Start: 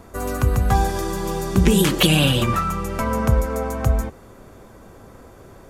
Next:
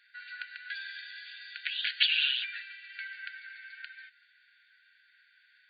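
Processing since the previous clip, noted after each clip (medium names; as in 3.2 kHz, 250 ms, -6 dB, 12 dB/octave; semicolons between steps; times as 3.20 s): FFT band-pass 1.4–4.7 kHz; trim -5 dB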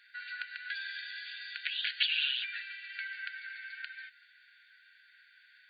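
compression 1.5:1, threshold -42 dBFS, peak gain reduction 8 dB; trim +3 dB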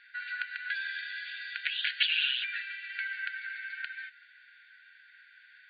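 distance through air 260 m; trim +7 dB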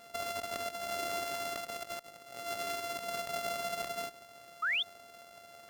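sorted samples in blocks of 64 samples; compressor with a negative ratio -38 dBFS, ratio -0.5; painted sound rise, 4.62–4.83 s, 1.2–3.7 kHz -31 dBFS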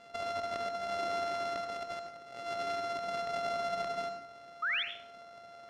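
distance through air 100 m; reverberation RT60 0.55 s, pre-delay 69 ms, DRR 6.5 dB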